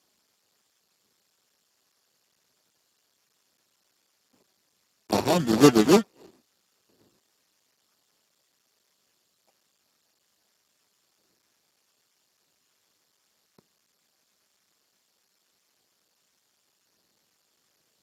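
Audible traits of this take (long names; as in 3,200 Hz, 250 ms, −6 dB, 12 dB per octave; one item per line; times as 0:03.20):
aliases and images of a low sample rate 1,600 Hz, jitter 0%
tremolo triangle 0.9 Hz, depth 60%
a quantiser's noise floor 12 bits, dither triangular
Speex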